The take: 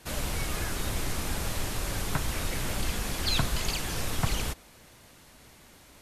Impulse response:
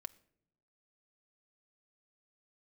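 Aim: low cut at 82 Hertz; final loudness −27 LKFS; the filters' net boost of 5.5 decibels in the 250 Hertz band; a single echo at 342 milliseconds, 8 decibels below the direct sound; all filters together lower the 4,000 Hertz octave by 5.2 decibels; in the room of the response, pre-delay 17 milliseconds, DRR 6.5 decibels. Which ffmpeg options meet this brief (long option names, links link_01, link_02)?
-filter_complex "[0:a]highpass=82,equalizer=frequency=250:width_type=o:gain=7.5,equalizer=frequency=4000:width_type=o:gain=-6.5,aecho=1:1:342:0.398,asplit=2[link_01][link_02];[1:a]atrim=start_sample=2205,adelay=17[link_03];[link_02][link_03]afir=irnorm=-1:irlink=0,volume=-1.5dB[link_04];[link_01][link_04]amix=inputs=2:normalize=0,volume=4dB"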